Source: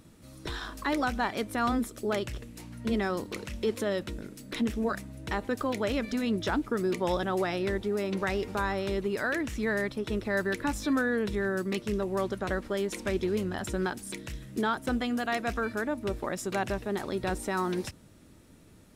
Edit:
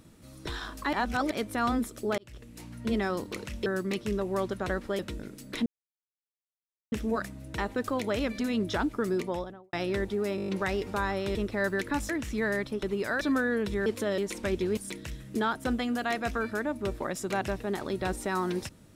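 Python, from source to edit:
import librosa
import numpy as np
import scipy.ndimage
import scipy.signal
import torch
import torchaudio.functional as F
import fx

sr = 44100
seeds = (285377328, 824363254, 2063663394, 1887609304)

y = fx.studio_fade_out(x, sr, start_s=6.81, length_s=0.65)
y = fx.edit(y, sr, fx.reverse_span(start_s=0.93, length_s=0.38),
    fx.fade_in_span(start_s=2.18, length_s=0.45),
    fx.swap(start_s=3.66, length_s=0.32, other_s=11.47, other_length_s=1.33),
    fx.insert_silence(at_s=4.65, length_s=1.26),
    fx.stutter(start_s=8.09, slice_s=0.02, count=7),
    fx.swap(start_s=8.96, length_s=0.38, other_s=10.08, other_length_s=0.74),
    fx.cut(start_s=13.39, length_s=0.6), tone=tone)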